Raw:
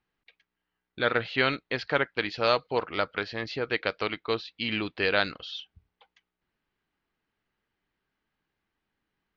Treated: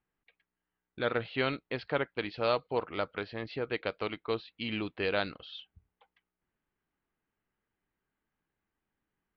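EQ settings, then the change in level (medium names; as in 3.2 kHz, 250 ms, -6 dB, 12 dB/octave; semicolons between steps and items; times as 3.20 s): dynamic bell 4.8 kHz, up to +6 dB, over -43 dBFS, Q 0.89; dynamic bell 1.7 kHz, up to -5 dB, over -39 dBFS, Q 1.7; distance through air 360 m; -2.5 dB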